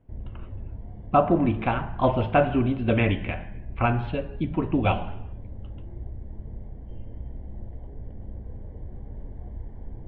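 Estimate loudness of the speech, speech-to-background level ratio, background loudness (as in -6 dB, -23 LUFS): -24.5 LUFS, 16.5 dB, -41.0 LUFS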